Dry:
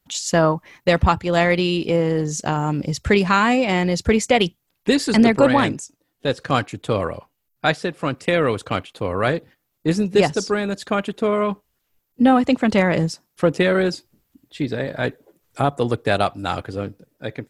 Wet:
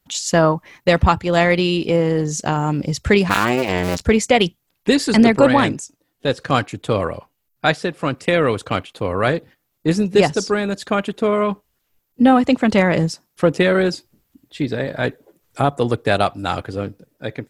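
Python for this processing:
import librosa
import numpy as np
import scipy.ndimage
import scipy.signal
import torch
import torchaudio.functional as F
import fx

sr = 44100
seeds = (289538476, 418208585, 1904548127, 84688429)

y = fx.cycle_switch(x, sr, every=2, mode='muted', at=(3.28, 4.01), fade=0.02)
y = y * librosa.db_to_amplitude(2.0)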